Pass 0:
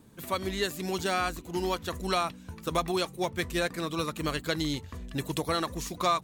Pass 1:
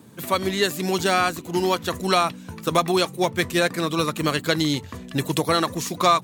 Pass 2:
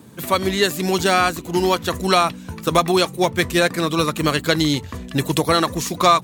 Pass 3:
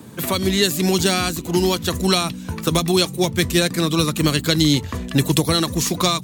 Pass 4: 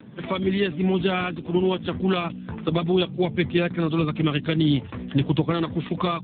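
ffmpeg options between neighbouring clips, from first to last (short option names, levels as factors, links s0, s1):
-af "highpass=f=97:w=0.5412,highpass=f=97:w=1.3066,volume=2.66"
-af "equalizer=f=62:w=4:g=15,volume=1.5"
-filter_complex "[0:a]acrossover=split=320|3000[s0][s1][s2];[s1]acompressor=threshold=0.0355:ratio=5[s3];[s0][s3][s2]amix=inputs=3:normalize=0,volume=1.68"
-af "volume=0.75" -ar 8000 -c:a libopencore_amrnb -b:a 5900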